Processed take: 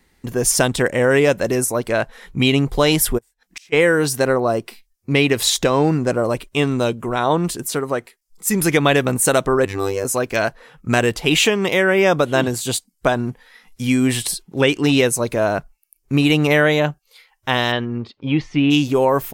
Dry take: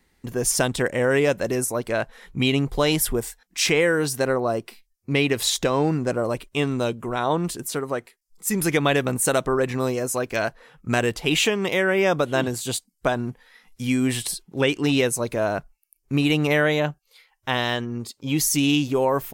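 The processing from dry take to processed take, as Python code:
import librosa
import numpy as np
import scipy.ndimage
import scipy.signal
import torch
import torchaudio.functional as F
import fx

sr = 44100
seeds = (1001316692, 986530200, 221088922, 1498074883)

y = fx.gate_flip(x, sr, shuts_db=-25.0, range_db=-33, at=(3.17, 3.72), fade=0.02)
y = fx.robotise(y, sr, hz=97.7, at=(9.65, 10.05))
y = fx.lowpass(y, sr, hz=fx.line((17.71, 4300.0), (18.7, 2500.0)), slope=24, at=(17.71, 18.7), fade=0.02)
y = F.gain(torch.from_numpy(y), 5.0).numpy()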